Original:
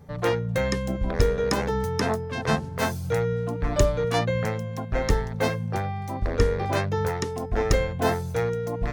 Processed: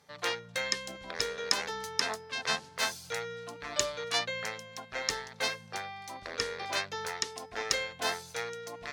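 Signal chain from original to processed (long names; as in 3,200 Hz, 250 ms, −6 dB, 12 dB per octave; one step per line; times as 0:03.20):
resonant band-pass 4,700 Hz, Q 0.59
parametric band 4,400 Hz +3 dB 0.77 octaves
level +2 dB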